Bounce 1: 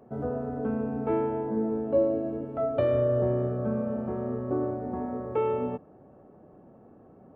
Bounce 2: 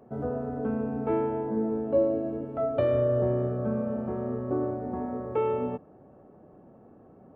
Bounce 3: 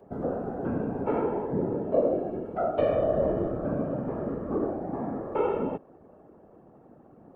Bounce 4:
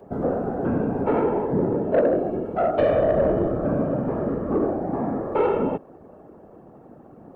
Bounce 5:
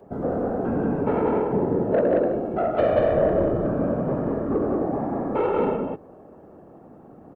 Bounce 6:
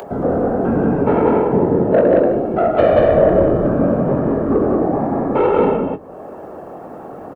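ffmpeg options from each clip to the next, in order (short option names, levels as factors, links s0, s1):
-af anull
-af "highpass=150,afftfilt=real='hypot(re,im)*cos(2*PI*random(0))':imag='hypot(re,im)*sin(2*PI*random(1))':win_size=512:overlap=0.75,volume=2.11"
-af "asoftclip=type=tanh:threshold=0.119,volume=2.24"
-af "aecho=1:1:125.4|183.7:0.282|0.794,volume=0.75"
-filter_complex "[0:a]acrossover=split=430[s0][s1];[s1]acompressor=mode=upward:threshold=0.0282:ratio=2.5[s2];[s0][s2]amix=inputs=2:normalize=0,asplit=2[s3][s4];[s4]adelay=22,volume=0.299[s5];[s3][s5]amix=inputs=2:normalize=0,volume=2.37"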